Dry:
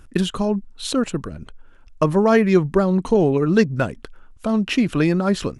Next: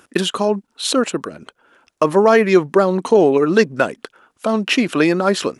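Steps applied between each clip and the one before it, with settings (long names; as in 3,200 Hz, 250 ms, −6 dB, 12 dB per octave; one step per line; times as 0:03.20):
high-pass filter 330 Hz 12 dB per octave
boost into a limiter +8 dB
level −1 dB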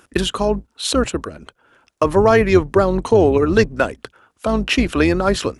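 sub-octave generator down 2 octaves, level −4 dB
level −1 dB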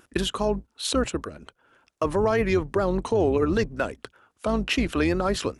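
brickwall limiter −7 dBFS, peak gain reduction 5.5 dB
pitch vibrato 5.1 Hz 40 cents
level −6 dB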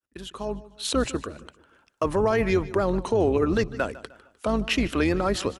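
fade in at the beginning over 1.00 s
repeating echo 152 ms, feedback 41%, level −18 dB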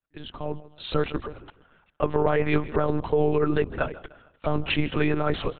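one-pitch LPC vocoder at 8 kHz 150 Hz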